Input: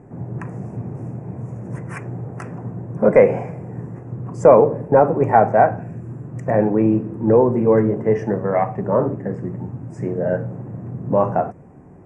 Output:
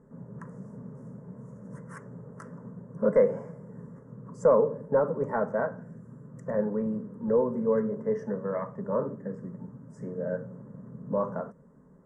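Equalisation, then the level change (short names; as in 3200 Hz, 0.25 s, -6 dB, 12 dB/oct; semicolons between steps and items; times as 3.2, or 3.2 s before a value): fixed phaser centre 500 Hz, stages 8; -9.0 dB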